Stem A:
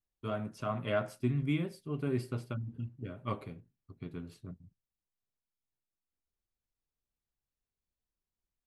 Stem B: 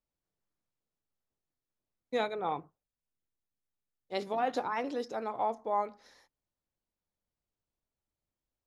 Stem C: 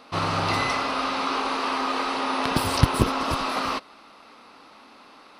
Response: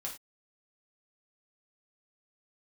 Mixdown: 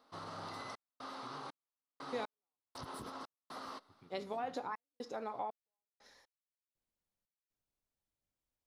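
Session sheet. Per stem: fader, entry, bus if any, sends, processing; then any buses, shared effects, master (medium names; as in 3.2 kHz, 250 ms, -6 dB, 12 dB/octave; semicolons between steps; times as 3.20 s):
-12.0 dB, 0.00 s, bus A, no send, compression 2.5:1, threshold -45 dBFS, peak gain reduction 12.5 dB
-5.0 dB, 0.00 s, no bus, send -9 dB, compression, threshold -33 dBFS, peak gain reduction 8.5 dB
-18.5 dB, 0.00 s, bus A, no send, peaking EQ 2.5 kHz -13 dB 0.41 oct
bus A: 0.0 dB, high-pass 170 Hz 6 dB/octave; peak limiter -36.5 dBFS, peak gain reduction 11.5 dB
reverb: on, pre-delay 3 ms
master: trance gate "xxx.xx..x..xx.xx" 60 bpm -60 dB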